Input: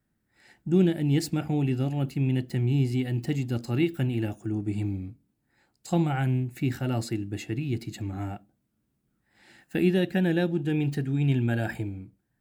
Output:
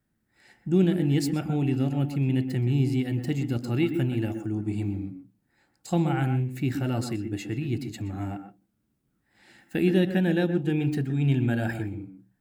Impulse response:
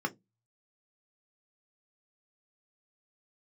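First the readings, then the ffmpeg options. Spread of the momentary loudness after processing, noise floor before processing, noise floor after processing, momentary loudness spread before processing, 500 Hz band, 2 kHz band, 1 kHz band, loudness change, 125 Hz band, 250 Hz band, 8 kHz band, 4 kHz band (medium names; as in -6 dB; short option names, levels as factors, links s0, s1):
11 LU, -76 dBFS, -74 dBFS, 10 LU, +0.5 dB, +0.5 dB, +1.0 dB, +1.0 dB, +0.5 dB, +1.5 dB, 0.0 dB, 0.0 dB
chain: -filter_complex "[0:a]asplit=2[s0][s1];[1:a]atrim=start_sample=2205,adelay=122[s2];[s1][s2]afir=irnorm=-1:irlink=0,volume=0.178[s3];[s0][s3]amix=inputs=2:normalize=0"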